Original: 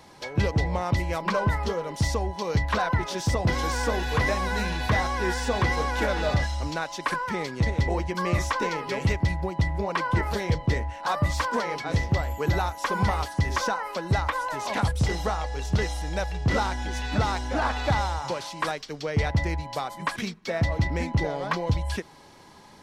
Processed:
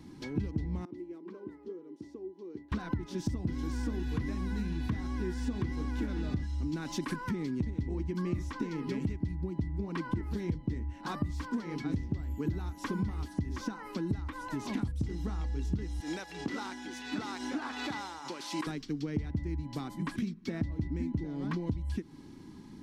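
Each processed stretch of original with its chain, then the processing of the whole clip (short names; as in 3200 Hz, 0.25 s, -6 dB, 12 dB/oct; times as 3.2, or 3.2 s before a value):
0.85–2.72 band-pass 370 Hz, Q 4.6 + tilt +4.5 dB/oct
6.73–7.31 high shelf 11000 Hz +7.5 dB + fast leveller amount 50%
16–18.67 HPF 550 Hz + backwards sustainer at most 47 dB/s
whole clip: resonant low shelf 410 Hz +12 dB, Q 3; compressor 5:1, threshold -22 dBFS; gain -9 dB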